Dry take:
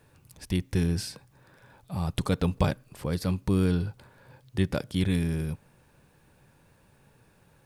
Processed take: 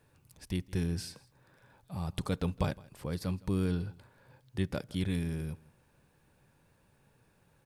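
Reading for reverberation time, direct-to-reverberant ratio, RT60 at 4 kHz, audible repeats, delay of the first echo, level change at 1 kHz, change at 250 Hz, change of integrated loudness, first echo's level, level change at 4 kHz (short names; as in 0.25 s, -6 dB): none, none, none, 1, 0.163 s, -6.5 dB, -6.5 dB, -6.5 dB, -22.5 dB, -6.5 dB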